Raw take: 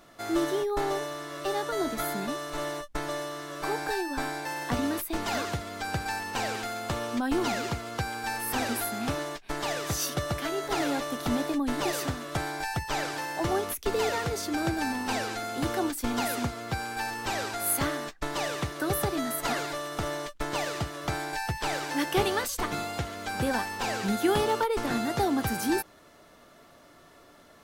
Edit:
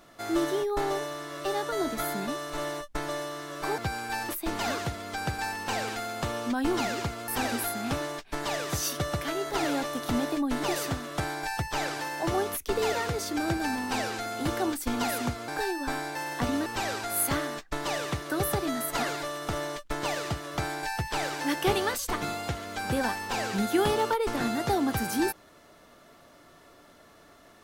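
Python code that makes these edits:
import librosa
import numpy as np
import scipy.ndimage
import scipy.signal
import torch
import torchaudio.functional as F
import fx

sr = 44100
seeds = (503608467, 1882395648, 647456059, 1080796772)

y = fx.edit(x, sr, fx.swap(start_s=3.78, length_s=1.18, other_s=16.65, other_length_s=0.51),
    fx.cut(start_s=7.95, length_s=0.5), tone=tone)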